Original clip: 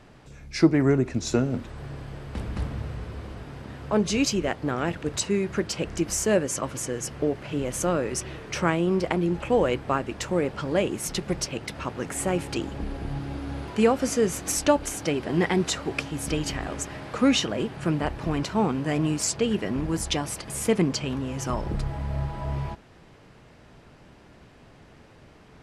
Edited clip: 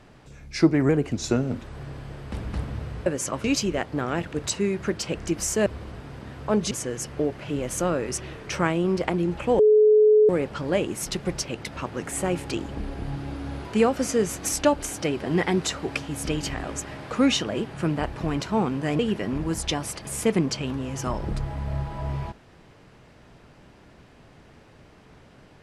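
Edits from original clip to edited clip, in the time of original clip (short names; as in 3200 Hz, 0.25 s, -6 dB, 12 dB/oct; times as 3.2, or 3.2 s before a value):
0.89–1.16 speed 112%
3.09–4.14 swap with 6.36–6.74
9.62–10.32 bleep 427 Hz -12.5 dBFS
19.02–19.42 cut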